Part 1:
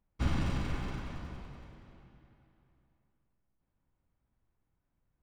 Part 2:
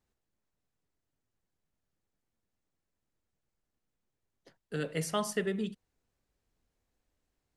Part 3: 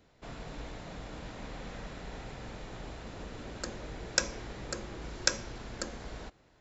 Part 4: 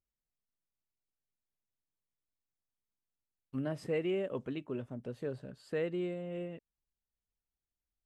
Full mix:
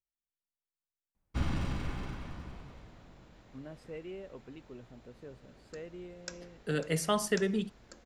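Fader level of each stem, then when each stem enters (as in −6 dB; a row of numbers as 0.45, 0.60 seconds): −1.5, +2.5, −16.0, −10.5 decibels; 1.15, 1.95, 2.10, 0.00 seconds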